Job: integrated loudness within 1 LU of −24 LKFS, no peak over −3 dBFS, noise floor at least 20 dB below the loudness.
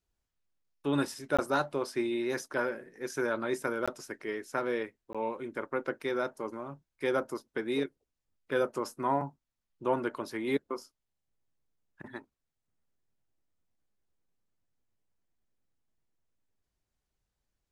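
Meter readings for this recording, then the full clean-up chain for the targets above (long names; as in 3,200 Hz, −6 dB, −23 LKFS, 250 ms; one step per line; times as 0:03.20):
number of dropouts 3; longest dropout 16 ms; integrated loudness −33.5 LKFS; sample peak −15.5 dBFS; target loudness −24.0 LKFS
→ repair the gap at 0:01.37/0:03.86/0:05.13, 16 ms
level +9.5 dB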